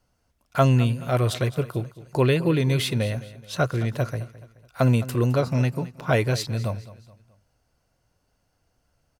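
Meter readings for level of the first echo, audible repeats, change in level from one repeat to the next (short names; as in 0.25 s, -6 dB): -17.0 dB, 3, -7.5 dB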